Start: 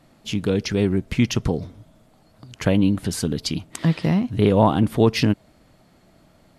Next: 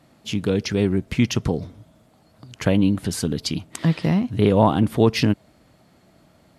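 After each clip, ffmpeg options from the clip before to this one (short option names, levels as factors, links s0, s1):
-af "highpass=51"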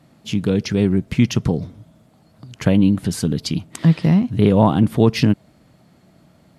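-af "equalizer=f=160:t=o:w=1.3:g=6"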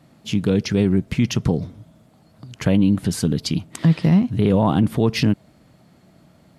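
-af "alimiter=limit=0.398:level=0:latency=1:release=22"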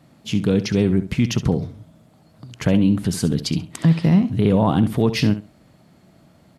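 -af "aecho=1:1:67|134:0.224|0.0403"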